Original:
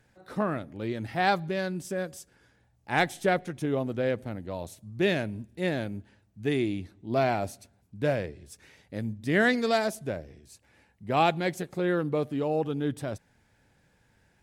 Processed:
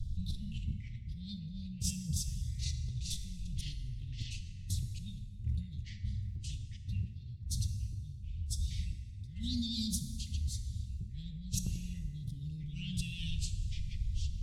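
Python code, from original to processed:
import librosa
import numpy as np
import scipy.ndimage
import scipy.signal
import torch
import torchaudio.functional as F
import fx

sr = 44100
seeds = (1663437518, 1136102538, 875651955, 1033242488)

y = scipy.signal.sosfilt(scipy.signal.cheby1(5, 1.0, [180.0, 3500.0], 'bandstop', fs=sr, output='sos'), x)
y = fx.riaa(y, sr, side='playback')
y = y + 0.69 * np.pad(y, (int(3.3 * sr / 1000.0), 0))[:len(y)]
y = fx.over_compress(y, sr, threshold_db=-48.0, ratio=-1.0)
y = fx.echo_pitch(y, sr, ms=166, semitones=-5, count=2, db_per_echo=-6.0)
y = fx.rev_plate(y, sr, seeds[0], rt60_s=2.3, hf_ratio=0.55, predelay_ms=0, drr_db=7.0)
y = y * 10.0 ** (5.5 / 20.0)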